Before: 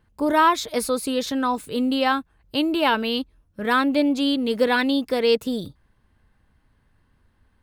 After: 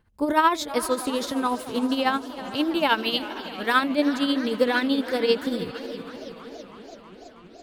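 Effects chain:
0:02.89–0:03.89: tilt shelving filter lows −4.5 dB, about 740 Hz
feedback delay with all-pass diffusion 459 ms, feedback 43%, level −14.5 dB
amplitude tremolo 13 Hz, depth 58%
feedback echo with a swinging delay time 327 ms, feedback 78%, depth 187 cents, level −17 dB

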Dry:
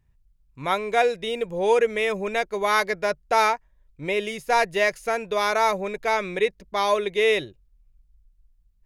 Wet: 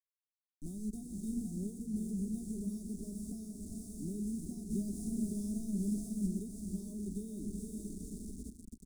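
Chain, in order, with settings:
high-pass filter 110 Hz 12 dB per octave
feedback delay with all-pass diffusion 455 ms, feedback 57%, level −5 dB
bit reduction 5 bits
downward compressor, threshold −21 dBFS, peak gain reduction 7.5 dB
0:04.70–0:06.27: leveller curve on the samples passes 1
elliptic band-stop filter 220–9,200 Hz, stop band 60 dB
high-frequency loss of the air 120 metres
phaser with its sweep stopped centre 490 Hz, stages 6
single-tap delay 126 ms −14.5 dB
level +5.5 dB

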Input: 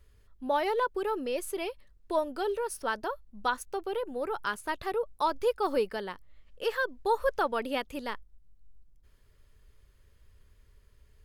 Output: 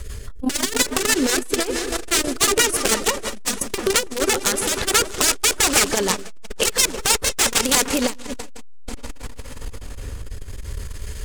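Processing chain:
wrap-around overflow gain 26.5 dB
parametric band 7,800 Hz +10 dB 1.1 octaves
on a send at −20.5 dB: convolution reverb RT60 5.2 s, pre-delay 140 ms
on the sum: downward compressor 4 to 1, threshold −45 dBFS, peak gain reduction 17 dB
rotating-speaker cabinet horn 6 Hz, later 0.6 Hz, at 0:06.56
echo whose low-pass opens from repeat to repeat 164 ms, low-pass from 400 Hz, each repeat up 2 octaves, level −6 dB
boost into a limiter +31 dB
saturating transformer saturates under 310 Hz

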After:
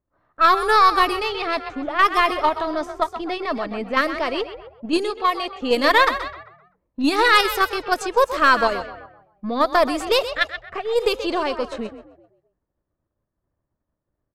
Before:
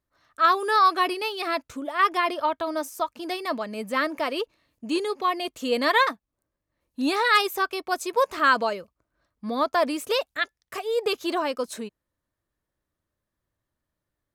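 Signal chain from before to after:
gain on one half-wave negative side −3 dB
echo with shifted repeats 129 ms, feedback 44%, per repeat +37 Hz, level −11 dB
in parallel at +0.5 dB: output level in coarse steps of 12 dB
0:05.10–0:05.61: on the sum: low-shelf EQ 290 Hz −9.5 dB
low-pass that shuts in the quiet parts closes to 1,000 Hz, open at −17 dBFS
level +1.5 dB

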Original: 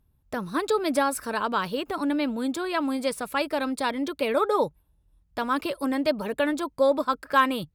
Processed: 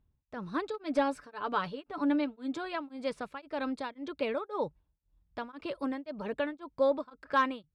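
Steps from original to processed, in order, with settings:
0:00.73–0:02.75: comb filter 6.9 ms, depth 52%
hard clipping −12.5 dBFS, distortion −26 dB
high-frequency loss of the air 130 metres
tremolo along a rectified sine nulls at 1.9 Hz
level −5 dB

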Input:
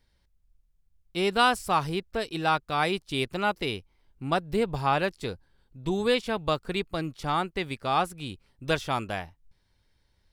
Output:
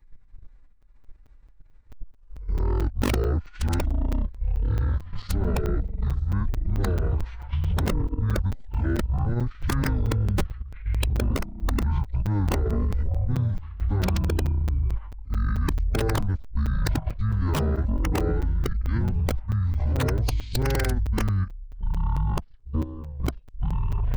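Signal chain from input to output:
played backwards from end to start
downward compressor 2.5 to 1, threshold −33 dBFS, peak gain reduction 11.5 dB
low-shelf EQ 270 Hz +11.5 dB
wrong playback speed 78 rpm record played at 33 rpm
delay with pitch and tempo change per echo 192 ms, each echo −6 semitones, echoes 2
low-shelf EQ 120 Hz +12 dB
output level in coarse steps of 13 dB
wrap-around overflow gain 18.5 dB
phase-vocoder pitch shift with formants kept +4 semitones
notch filter 680 Hz, Q 12
regular buffer underruns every 0.22 s, samples 256, zero, from 0:00.82
level +4 dB

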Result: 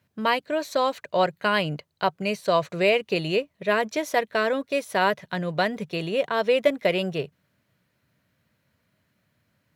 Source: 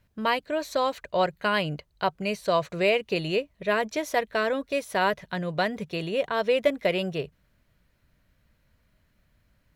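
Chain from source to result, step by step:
high-pass filter 100 Hz 24 dB per octave
in parallel at −10.5 dB: dead-zone distortion −45.5 dBFS

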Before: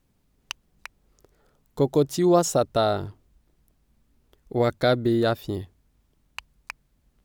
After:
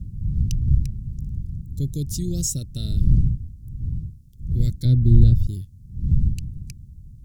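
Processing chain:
wind on the microphone 120 Hz −27 dBFS
Chebyshev band-stop filter 130–6,400 Hz, order 2
0:04.85–0:05.47: spectral tilt −3.5 dB per octave
level +4.5 dB

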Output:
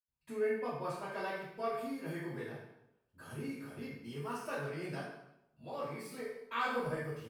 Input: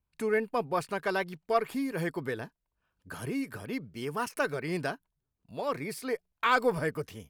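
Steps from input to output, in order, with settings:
double-tracking delay 21 ms −11.5 dB
convolution reverb RT60 0.85 s, pre-delay 77 ms, DRR −60 dB
level +12 dB

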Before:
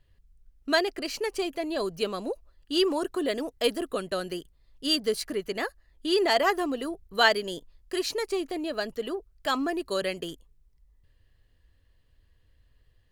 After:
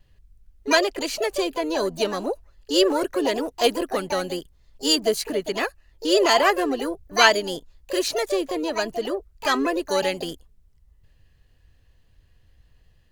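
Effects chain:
pitch vibrato 0.49 Hz 7.5 cents
pitch-shifted copies added +7 semitones −6 dB
level +4.5 dB

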